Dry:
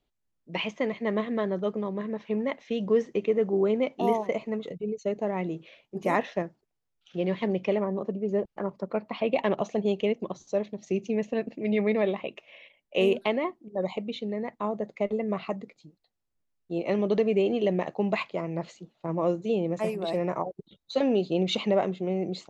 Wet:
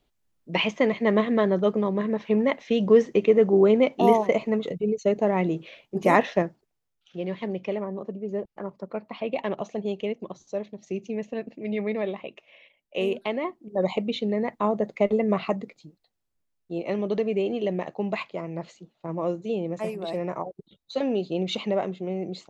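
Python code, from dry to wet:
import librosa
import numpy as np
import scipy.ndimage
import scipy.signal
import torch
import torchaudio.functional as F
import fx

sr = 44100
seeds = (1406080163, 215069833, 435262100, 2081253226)

y = fx.gain(x, sr, db=fx.line((6.44, 6.5), (7.19, -3.0), (13.22, -3.0), (13.9, 6.0), (15.42, 6.0), (16.97, -1.5)))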